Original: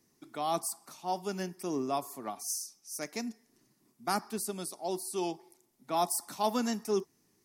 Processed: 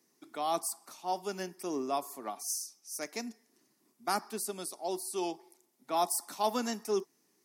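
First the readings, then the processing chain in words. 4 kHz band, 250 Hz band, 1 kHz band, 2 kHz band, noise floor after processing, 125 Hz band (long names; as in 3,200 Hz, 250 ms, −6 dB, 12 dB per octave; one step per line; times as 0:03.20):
0.0 dB, −3.0 dB, 0.0 dB, 0.0 dB, −73 dBFS, −7.0 dB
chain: high-pass filter 260 Hz 12 dB per octave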